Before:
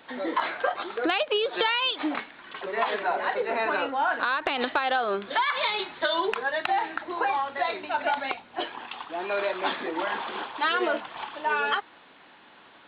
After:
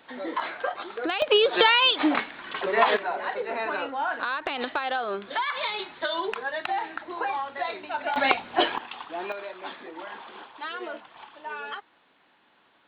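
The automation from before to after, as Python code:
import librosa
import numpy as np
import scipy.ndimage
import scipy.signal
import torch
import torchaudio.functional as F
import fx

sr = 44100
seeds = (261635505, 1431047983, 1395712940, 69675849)

y = fx.gain(x, sr, db=fx.steps((0.0, -3.0), (1.22, 6.0), (2.97, -3.0), (8.16, 9.0), (8.78, -1.0), (9.32, -10.0)))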